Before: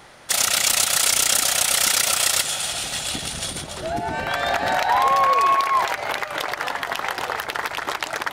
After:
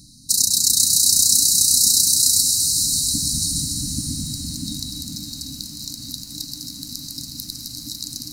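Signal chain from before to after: in parallel at -1 dB: compressor 6:1, threshold -26 dBFS, peak gain reduction 11.5 dB; on the sum: diffused feedback echo 0.548 s, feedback 47%, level -5 dB; FFT band-reject 310–3800 Hz; lo-fi delay 0.208 s, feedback 55%, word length 7-bit, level -11.5 dB; gain +1 dB

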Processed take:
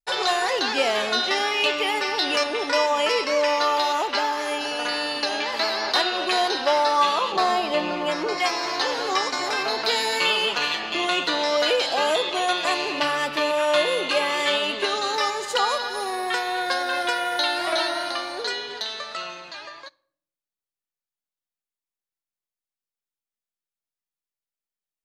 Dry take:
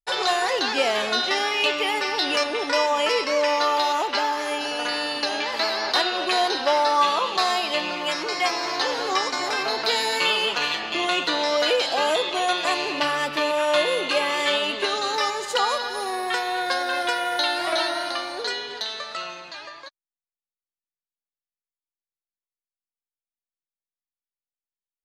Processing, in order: 7.32–8.38 tilt shelf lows +6 dB, about 1300 Hz; on a send: reverb RT60 0.65 s, pre-delay 5 ms, DRR 21 dB

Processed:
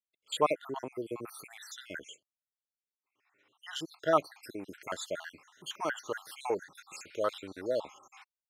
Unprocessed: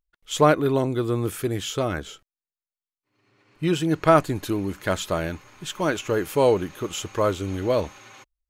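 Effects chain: random spectral dropouts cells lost 60%; weighting filter A; gain -6 dB

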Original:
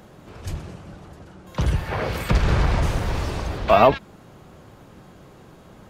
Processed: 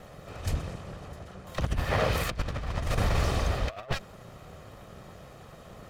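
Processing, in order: minimum comb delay 1.6 ms; negative-ratio compressor -24 dBFS, ratio -0.5; gain -3 dB

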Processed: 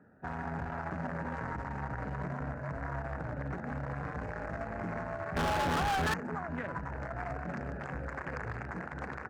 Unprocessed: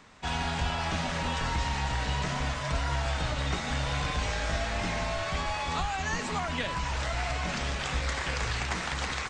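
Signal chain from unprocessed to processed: Wiener smoothing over 41 samples; HPF 110 Hz 12 dB/oct; resonant high shelf 2300 Hz -12.5 dB, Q 3; limiter -27 dBFS, peak gain reduction 11 dB; 5.36–6.14 sample leveller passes 5

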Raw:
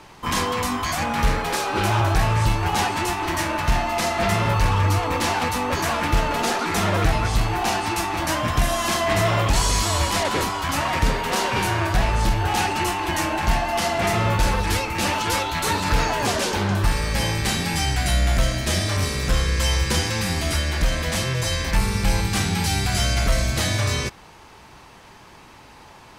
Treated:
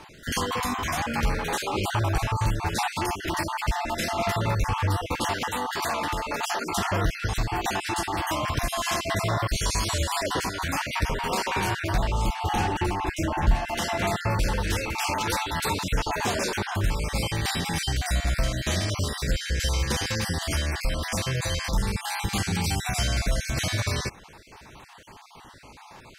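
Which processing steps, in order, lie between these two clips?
random spectral dropouts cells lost 32%; 12.55–13.55 tilt -2 dB/oct; compressor 1.5:1, threshold -28 dBFS, peak gain reduction 8 dB; 5.45–6.73 low shelf 190 Hz -10.5 dB

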